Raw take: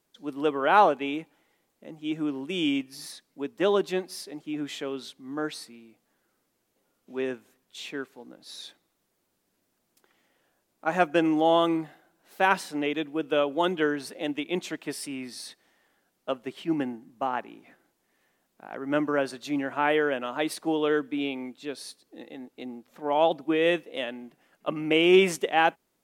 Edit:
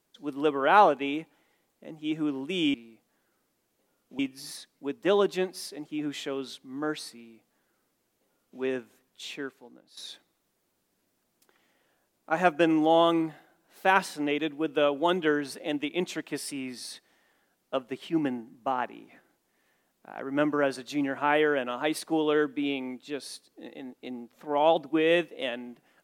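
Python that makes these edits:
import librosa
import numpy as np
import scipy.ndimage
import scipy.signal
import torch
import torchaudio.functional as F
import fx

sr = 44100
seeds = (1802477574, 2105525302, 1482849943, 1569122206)

y = fx.edit(x, sr, fx.duplicate(start_s=5.71, length_s=1.45, to_s=2.74),
    fx.fade_out_to(start_s=7.81, length_s=0.71, floor_db=-12.5), tone=tone)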